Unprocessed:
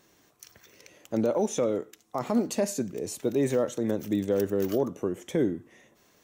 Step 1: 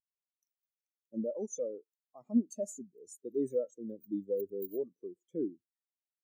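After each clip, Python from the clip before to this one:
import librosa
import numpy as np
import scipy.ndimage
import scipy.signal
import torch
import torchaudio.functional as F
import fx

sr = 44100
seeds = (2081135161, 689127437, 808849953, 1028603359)

y = librosa.effects.preemphasis(x, coef=0.8, zi=[0.0])
y = fx.spectral_expand(y, sr, expansion=2.5)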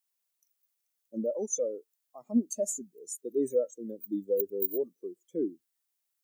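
y = fx.highpass(x, sr, hz=330.0, slope=6)
y = fx.high_shelf(y, sr, hz=6100.0, db=10.0)
y = y * 10.0 ** (6.5 / 20.0)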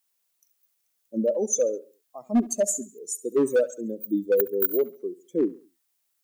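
y = np.clip(10.0 ** (23.0 / 20.0) * x, -1.0, 1.0) / 10.0 ** (23.0 / 20.0)
y = fx.echo_feedback(y, sr, ms=69, feedback_pct=42, wet_db=-19)
y = y * 10.0 ** (7.5 / 20.0)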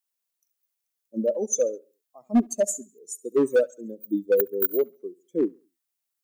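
y = fx.upward_expand(x, sr, threshold_db=-38.0, expansion=1.5)
y = y * 10.0 ** (2.0 / 20.0)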